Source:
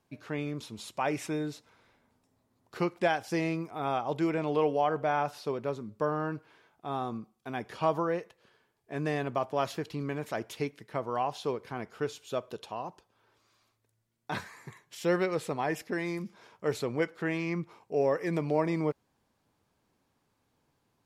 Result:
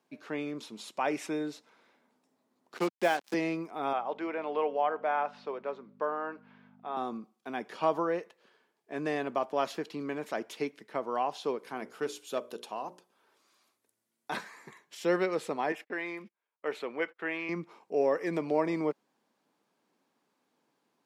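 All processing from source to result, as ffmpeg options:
-filter_complex "[0:a]asettb=1/sr,asplit=3[s0][s1][s2];[s0]atrim=end=2.774[s3];[s1]atrim=start=2.77:end=3.34,asetpts=PTS-STARTPTS,afade=t=in:d=0.004:c=qsin,afade=t=out:st=0.566:d=0.004:c=qsin,highpass=f=150:w=0.5412,highpass=f=150:w=1.3066,acrusher=bits=5:mix=0:aa=0.5[s4];[s2]atrim=start=3.336[s5];[s3][s4]acrossfade=d=0.004:c1=hsin:c2=qsin[s6];[s6][s5]acrossfade=d=0.004:c1=qsin:c2=hsin,asettb=1/sr,asplit=3[s7][s8][s9];[s7]atrim=end=3.934[s10];[s8]atrim=start=3.93:end=6.97,asetpts=PTS-STARTPTS,afade=t=in:d=0.004:c=qsin,afade=t=out:st=3.036:d=0.004:c=qsin,highpass=490,lowpass=2800,aeval=exprs='val(0)+0.00501*(sin(2*PI*50*n/s)+sin(2*PI*2*50*n/s)/2+sin(2*PI*3*50*n/s)/3+sin(2*PI*4*50*n/s)/4+sin(2*PI*5*50*n/s)/5)':c=same[s11];[s9]atrim=start=6.966[s12];[s10][s11]acrossfade=d=0.004:c1=hsin:c2=qsin[s13];[s13][s12]acrossfade=d=0.004:c1=qsin:c2=hsin,asettb=1/sr,asplit=3[s14][s15][s16];[s14]atrim=end=11.584[s17];[s15]atrim=start=11.58:end=14.37,asetpts=PTS-STARTPTS,afade=t=in:d=0.004:c=qsin,afade=t=out:st=2.786:d=0.004:c=qsin,equalizer=f=11000:w=0.87:g=10,bandreject=f=60:t=h:w=6,bandreject=f=120:t=h:w=6,bandreject=f=180:t=h:w=6,bandreject=f=240:t=h:w=6,bandreject=f=300:t=h:w=6,bandreject=f=360:t=h:w=6,bandreject=f=420:t=h:w=6,bandreject=f=480:t=h:w=6,bandreject=f=540:t=h:w=6,bandreject=f=600:t=h:w=6,aeval=exprs='clip(val(0),-1,0.0422)':c=same[s18];[s16]atrim=start=14.366[s19];[s17][s18]acrossfade=d=0.004:c1=hsin:c2=qsin[s20];[s20][s19]acrossfade=d=0.004:c1=qsin:c2=hsin,asettb=1/sr,asplit=3[s21][s22][s23];[s21]atrim=end=15.724[s24];[s22]atrim=start=15.72:end=17.49,asetpts=PTS-STARTPTS,afade=t=in:d=0.004:c=qsin,afade=t=out:st=1.766:d=0.004:c=qsin,highpass=f=580:p=1,agate=range=0.0224:threshold=0.00251:ratio=16:release=100:detection=peak,highshelf=f=3900:t=q:w=1.5:g=-9.5[s25];[s23]atrim=start=17.486[s26];[s24][s25]acrossfade=d=0.004:c1=hsin:c2=qsin[s27];[s27][s26]acrossfade=d=0.004:c1=qsin:c2=hsin,highpass=f=200:w=0.5412,highpass=f=200:w=1.3066,highshelf=f=9300:g=-6"

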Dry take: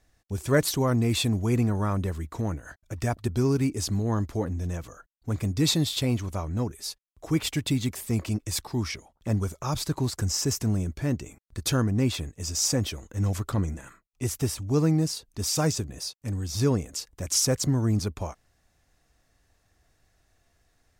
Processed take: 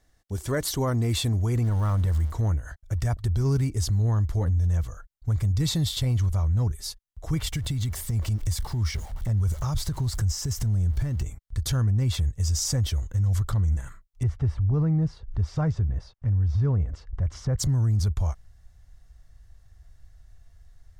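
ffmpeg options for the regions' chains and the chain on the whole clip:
-filter_complex "[0:a]asettb=1/sr,asplit=3[s0][s1][s2];[s0]atrim=end=1.644[s3];[s1]atrim=start=1.64:end=2.32,asetpts=PTS-STARTPTS,afade=t=in:d=0.004:c=qsin,afade=t=out:st=0.676:d=0.004:c=qsin,aeval=exprs='val(0)+0.5*0.0141*sgn(val(0))':c=same,bandreject=f=390:w=7.4[s4];[s2]atrim=start=2.316[s5];[s3][s4]acrossfade=d=0.004:c1=hsin:c2=qsin[s6];[s6][s5]acrossfade=d=0.004:c1=qsin:c2=hsin,asettb=1/sr,asplit=3[s7][s8][s9];[s7]atrim=end=7.524[s10];[s8]atrim=start=7.52:end=11.23,asetpts=PTS-STARTPTS,afade=t=in:d=0.004:c=qsin,afade=t=out:st=3.706:d=0.004:c=qsin,aeval=exprs='val(0)+0.5*0.00841*sgn(val(0))':c=same,acompressor=threshold=0.0355:ratio=6:attack=3.2:release=140:knee=1:detection=peak[s11];[s9]atrim=start=11.226[s12];[s10][s11]acrossfade=d=0.004:c1=hsin:c2=qsin[s13];[s13][s12]acrossfade=d=0.004:c1=qsin:c2=hsin,asettb=1/sr,asplit=3[s14][s15][s16];[s14]atrim=end=14.234[s17];[s15]atrim=start=14.23:end=17.59,asetpts=PTS-STARTPTS,afade=t=in:d=0.004:c=qsin,afade=t=out:st=3.356:d=0.004:c=qsin,acompressor=mode=upward:threshold=0.0178:ratio=2.5:attack=3.2:release=140:knee=2.83:detection=peak,lowpass=1700[s18];[s16]atrim=start=17.586[s19];[s17][s18]acrossfade=d=0.004:c1=hsin:c2=qsin[s20];[s20][s19]acrossfade=d=0.004:c1=qsin:c2=hsin,bandreject=f=2500:w=7.6,asubboost=boost=11.5:cutoff=84,alimiter=limit=0.126:level=0:latency=1:release=40"

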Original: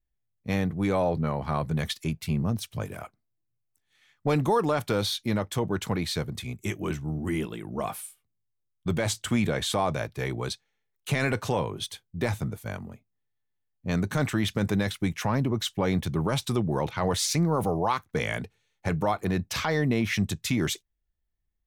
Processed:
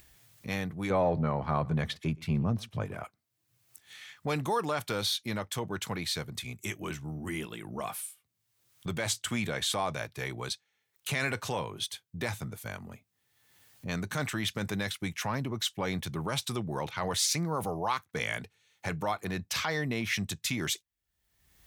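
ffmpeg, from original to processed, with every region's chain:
-filter_complex "[0:a]asettb=1/sr,asplit=3[s0][s1][s2];[s0]atrim=end=0.904[s3];[s1]atrim=start=0.9:end=3.04,asetpts=PTS-STARTPTS,afade=t=in:d=0.004:c=qsin,afade=t=out:st=2.136:d=0.004:c=qsin,acontrast=73,lowpass=f=1000:p=1,aecho=1:1:121:0.0631,atrim=end_sample=94374[s4];[s2]atrim=start=3.036[s5];[s3][s4]acrossfade=d=0.004:c1=hsin:c2=qsin[s6];[s6][s5]acrossfade=d=0.004:c1=qsin:c2=hsin,highpass=100,equalizer=f=270:w=0.31:g=-8.5,acompressor=mode=upward:threshold=0.02:ratio=2.5"

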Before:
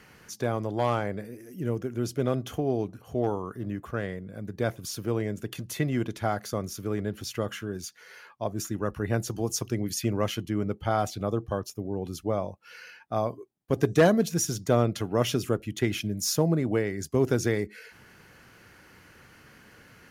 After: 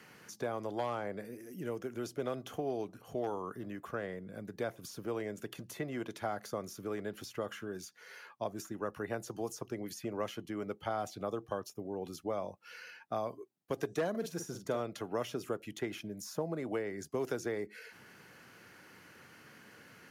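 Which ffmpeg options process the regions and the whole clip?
-filter_complex "[0:a]asettb=1/sr,asplit=3[s0][s1][s2];[s0]atrim=end=14.104[s3];[s1]atrim=start=14.1:end=14.8,asetpts=PTS-STARTPTS,afade=t=in:d=0.004:c=qsin,afade=t=out:st=0.696:d=0.004:c=qsin,bandreject=f=740:w=15,asplit=2[s4][s5];[s5]adelay=45,volume=0.376[s6];[s4][s6]amix=inputs=2:normalize=0,atrim=end_sample=30870[s7];[s2]atrim=start=14.796[s8];[s3][s7]acrossfade=d=0.004:c1=hsin:c2=qsin[s9];[s9][s8]acrossfade=d=0.004:c1=qsin:c2=hsin,acrossover=split=420|1400[s10][s11][s12];[s10]acompressor=threshold=0.0112:ratio=4[s13];[s11]acompressor=threshold=0.0251:ratio=4[s14];[s12]acompressor=threshold=0.00501:ratio=4[s15];[s13][s14][s15]amix=inputs=3:normalize=0,highpass=140,volume=0.75"

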